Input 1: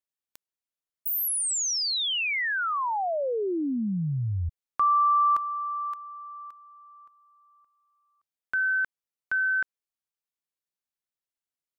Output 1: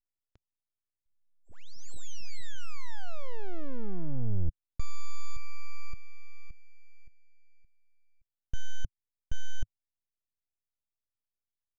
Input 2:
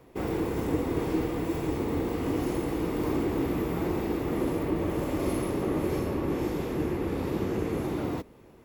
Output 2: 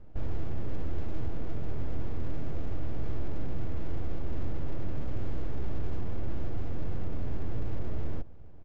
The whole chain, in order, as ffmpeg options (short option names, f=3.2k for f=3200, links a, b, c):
-filter_complex "[0:a]acrossover=split=4400[a][b];[b]acompressor=threshold=-35dB:ratio=4:attack=1:release=60[c];[a][c]amix=inputs=2:normalize=0,aemphasis=mode=reproduction:type=75kf,aeval=exprs='(tanh(39.8*val(0)+0.3)-tanh(0.3))/39.8':c=same,aresample=16000,aeval=exprs='abs(val(0))':c=same,aresample=44100,firequalizer=gain_entry='entry(100,0);entry(160,-10);entry(910,-22)':delay=0.05:min_phase=1,volume=13.5dB"